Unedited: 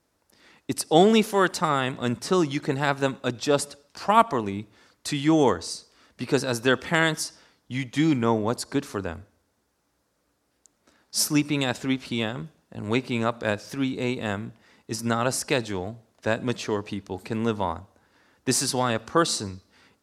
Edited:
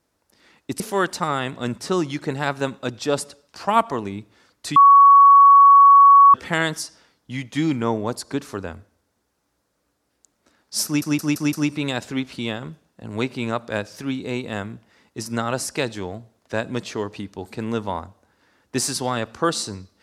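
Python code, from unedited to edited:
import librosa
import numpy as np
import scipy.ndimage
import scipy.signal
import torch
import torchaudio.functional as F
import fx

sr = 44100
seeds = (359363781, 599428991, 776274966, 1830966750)

y = fx.edit(x, sr, fx.cut(start_s=0.8, length_s=0.41),
    fx.bleep(start_s=5.17, length_s=1.58, hz=1120.0, db=-6.5),
    fx.stutter(start_s=11.26, slice_s=0.17, count=5), tone=tone)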